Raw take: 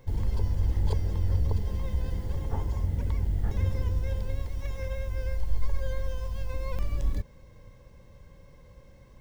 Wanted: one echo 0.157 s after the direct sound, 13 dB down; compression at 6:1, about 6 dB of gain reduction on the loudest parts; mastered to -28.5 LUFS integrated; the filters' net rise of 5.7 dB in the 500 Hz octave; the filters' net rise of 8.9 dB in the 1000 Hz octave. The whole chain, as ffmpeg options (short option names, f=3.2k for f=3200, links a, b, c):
-af "equalizer=f=500:t=o:g=4,equalizer=f=1k:t=o:g=9,acompressor=threshold=-24dB:ratio=6,aecho=1:1:157:0.224,volume=5dB"